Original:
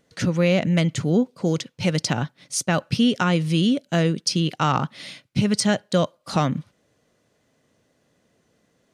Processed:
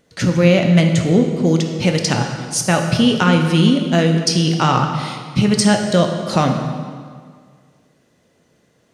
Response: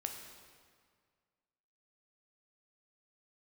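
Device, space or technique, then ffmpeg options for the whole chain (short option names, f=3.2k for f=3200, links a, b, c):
stairwell: -filter_complex "[1:a]atrim=start_sample=2205[a];[0:a][a]afir=irnorm=-1:irlink=0,volume=7dB"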